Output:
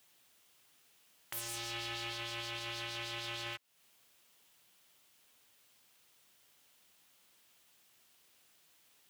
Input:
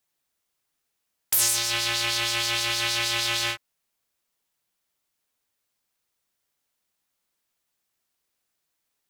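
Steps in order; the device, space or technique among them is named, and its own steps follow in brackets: broadcast voice chain (high-pass 76 Hz; de-esser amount 90%; compression 5:1, threshold -46 dBFS, peak gain reduction 16 dB; peaking EQ 3 kHz +5 dB 0.64 oct; peak limiter -38 dBFS, peak gain reduction 10 dB); 1.45–2.13 s: doubling 32 ms -6.5 dB; trim +10.5 dB

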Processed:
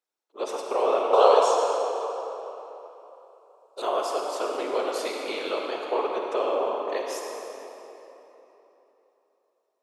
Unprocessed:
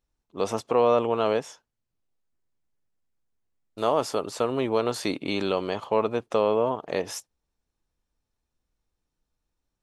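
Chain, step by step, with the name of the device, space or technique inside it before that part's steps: whispering ghost (whisper effect; high-pass 370 Hz 24 dB/octave; reverberation RT60 3.5 s, pre-delay 42 ms, DRR 0.5 dB); 1.13–3.82 s: graphic EQ 125/250/500/1000/2000/4000/8000 Hz +11/-11/+8/+11/-7/+11/+12 dB; trim -3.5 dB

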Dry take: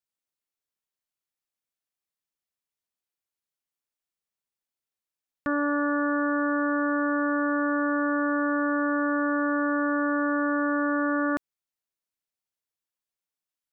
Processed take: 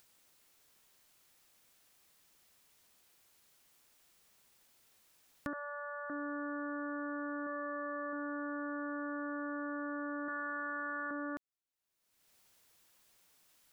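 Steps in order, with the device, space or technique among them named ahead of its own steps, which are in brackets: upward and downward compression (upward compressor, threshold -40 dBFS; compression 5:1, threshold -32 dBFS, peak gain reduction 9 dB); 5.53–6.10 s: steep high-pass 510 Hz 96 dB/octave; 7.46–8.13 s: comb 5.2 ms, depth 44%; 10.28–11.11 s: tilt shelf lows -10 dB, about 800 Hz; trim -5.5 dB

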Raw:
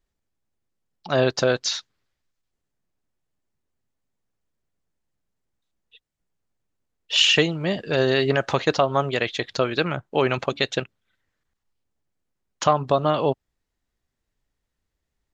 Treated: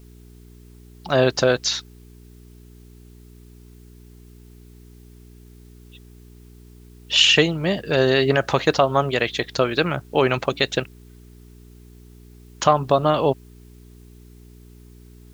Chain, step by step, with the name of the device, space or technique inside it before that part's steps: video cassette with head-switching buzz (mains buzz 60 Hz, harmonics 7, -48 dBFS -5 dB/octave; white noise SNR 36 dB); trim +2.5 dB

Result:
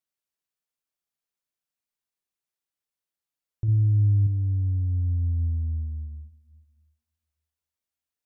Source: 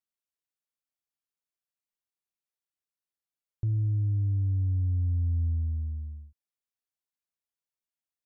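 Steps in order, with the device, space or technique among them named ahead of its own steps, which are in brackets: compressed reverb return (on a send at -14 dB: reverberation RT60 1.6 s, pre-delay 108 ms + compression, threshold -37 dBFS, peak gain reduction 15.5 dB); 3.68–4.27 s: on the sum: tone controls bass +5 dB, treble +8 dB; trim +2 dB

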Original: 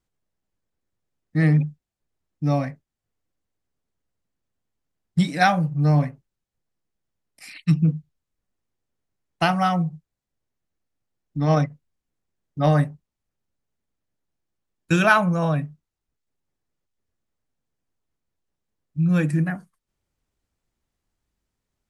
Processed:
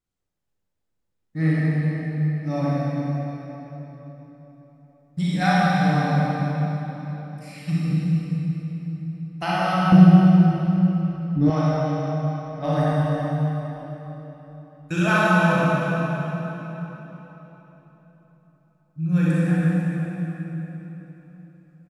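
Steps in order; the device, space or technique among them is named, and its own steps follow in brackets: cave (delay 330 ms -11.5 dB; reverberation RT60 4.0 s, pre-delay 31 ms, DRR -9 dB); 9.92–11.50 s: resonant low shelf 550 Hz +11 dB, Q 1.5; trim -9 dB

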